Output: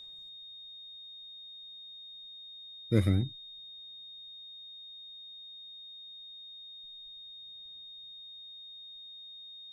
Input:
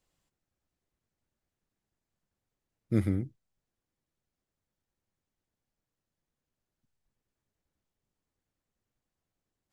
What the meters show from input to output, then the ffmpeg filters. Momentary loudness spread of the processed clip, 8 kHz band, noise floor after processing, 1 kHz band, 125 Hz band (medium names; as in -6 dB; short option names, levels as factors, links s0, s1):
14 LU, no reading, -49 dBFS, +3.0 dB, +3.0 dB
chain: -af "aphaser=in_gain=1:out_gain=1:delay=4.6:decay=0.52:speed=0.26:type=sinusoidal,aeval=exprs='val(0)+0.00398*sin(2*PI*3700*n/s)':c=same,volume=1.33"